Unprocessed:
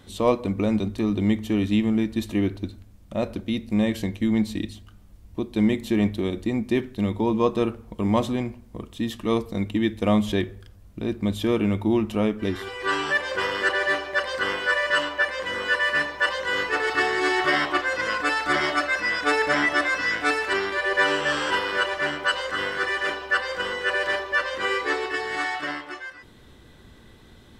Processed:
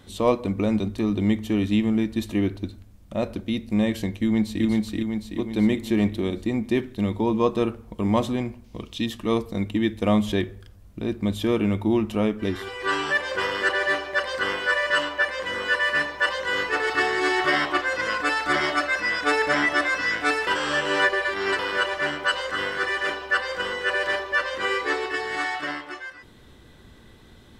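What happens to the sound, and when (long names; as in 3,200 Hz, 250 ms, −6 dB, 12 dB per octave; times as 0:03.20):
0:04.19–0:04.64: delay throw 380 ms, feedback 55%, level −1 dB
0:08.64–0:09.06: flat-topped bell 3,800 Hz +9 dB
0:20.47–0:21.59: reverse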